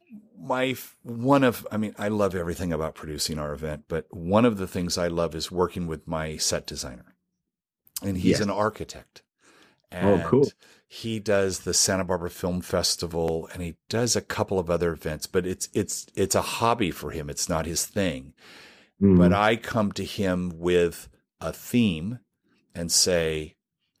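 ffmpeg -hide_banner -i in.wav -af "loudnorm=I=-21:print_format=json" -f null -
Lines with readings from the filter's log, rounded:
"input_i" : "-25.3",
"input_tp" : "-7.4",
"input_lra" : "4.6",
"input_thresh" : "-36.2",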